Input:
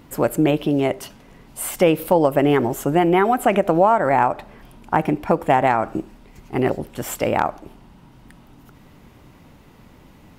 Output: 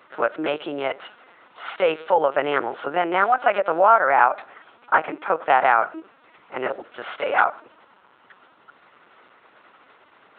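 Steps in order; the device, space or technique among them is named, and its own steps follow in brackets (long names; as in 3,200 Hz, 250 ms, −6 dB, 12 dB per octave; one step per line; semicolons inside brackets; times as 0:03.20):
talking toy (linear-prediction vocoder at 8 kHz pitch kept; high-pass filter 550 Hz 12 dB per octave; parametric band 1,400 Hz +10.5 dB 0.47 octaves)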